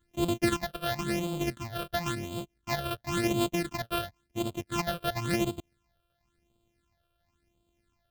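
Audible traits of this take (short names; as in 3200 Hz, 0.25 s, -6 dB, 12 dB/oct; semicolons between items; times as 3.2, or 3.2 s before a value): a buzz of ramps at a fixed pitch in blocks of 128 samples; phasing stages 8, 0.95 Hz, lowest notch 260–1800 Hz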